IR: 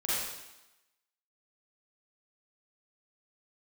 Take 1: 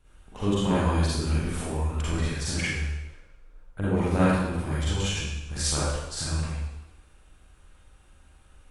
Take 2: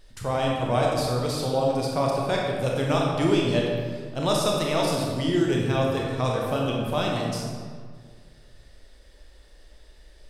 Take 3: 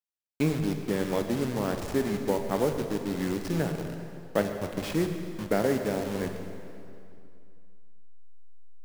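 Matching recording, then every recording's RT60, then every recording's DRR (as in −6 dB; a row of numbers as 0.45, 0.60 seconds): 1; 0.95, 1.8, 2.6 seconds; −10.0, −2.5, 5.0 decibels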